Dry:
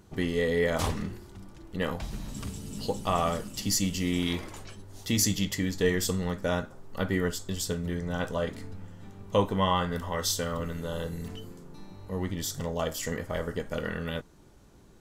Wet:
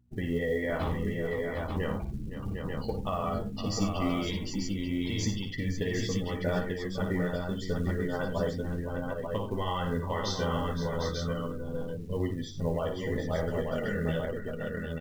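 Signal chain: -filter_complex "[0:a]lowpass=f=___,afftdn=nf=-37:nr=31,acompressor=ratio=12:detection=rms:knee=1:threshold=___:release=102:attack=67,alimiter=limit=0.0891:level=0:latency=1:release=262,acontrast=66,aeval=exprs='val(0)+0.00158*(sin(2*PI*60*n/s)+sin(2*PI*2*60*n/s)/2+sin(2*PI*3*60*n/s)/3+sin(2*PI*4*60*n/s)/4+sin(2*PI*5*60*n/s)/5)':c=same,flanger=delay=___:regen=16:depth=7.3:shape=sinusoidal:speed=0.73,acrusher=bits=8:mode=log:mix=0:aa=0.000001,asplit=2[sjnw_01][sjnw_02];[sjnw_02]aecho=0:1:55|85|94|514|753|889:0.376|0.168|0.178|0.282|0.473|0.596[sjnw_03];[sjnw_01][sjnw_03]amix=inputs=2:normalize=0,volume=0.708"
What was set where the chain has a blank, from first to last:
4.1k, 0.0398, 7.7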